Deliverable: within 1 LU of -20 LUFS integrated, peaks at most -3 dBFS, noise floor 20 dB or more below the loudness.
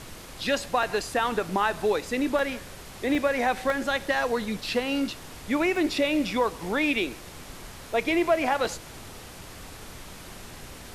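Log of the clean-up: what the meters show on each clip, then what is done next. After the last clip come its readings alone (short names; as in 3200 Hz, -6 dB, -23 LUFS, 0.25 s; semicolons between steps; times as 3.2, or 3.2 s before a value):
dropouts 8; longest dropout 1.8 ms; noise floor -44 dBFS; noise floor target -47 dBFS; loudness -26.5 LUFS; peak -11.0 dBFS; loudness target -20.0 LUFS
-> interpolate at 0.83/2.39/3.15/3.7/4.73/5.76/7.93/8.65, 1.8 ms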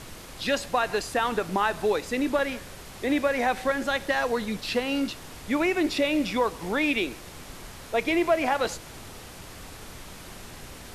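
dropouts 0; noise floor -44 dBFS; noise floor target -47 dBFS
-> noise print and reduce 6 dB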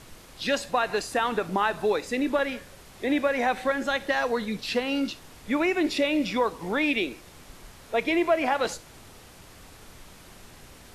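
noise floor -50 dBFS; loudness -26.5 LUFS; peak -11.0 dBFS; loudness target -20.0 LUFS
-> gain +6.5 dB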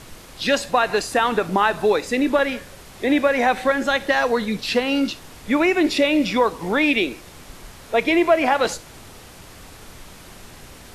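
loudness -20.0 LUFS; peak -4.5 dBFS; noise floor -43 dBFS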